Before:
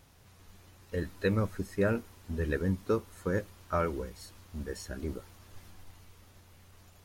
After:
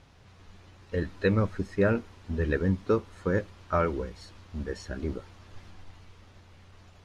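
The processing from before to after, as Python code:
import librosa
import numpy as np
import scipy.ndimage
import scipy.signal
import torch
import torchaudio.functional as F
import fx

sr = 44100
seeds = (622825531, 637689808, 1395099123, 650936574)

y = scipy.signal.sosfilt(scipy.signal.butter(2, 4700.0, 'lowpass', fs=sr, output='sos'), x)
y = y * librosa.db_to_amplitude(4.0)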